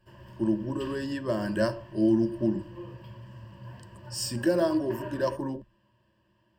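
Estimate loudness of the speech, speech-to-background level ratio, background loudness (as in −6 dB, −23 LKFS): −29.0 LKFS, 16.5 dB, −45.5 LKFS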